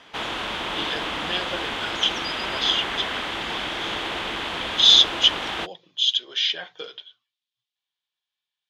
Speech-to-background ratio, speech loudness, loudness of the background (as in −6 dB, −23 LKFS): 7.5 dB, −20.0 LKFS, −27.5 LKFS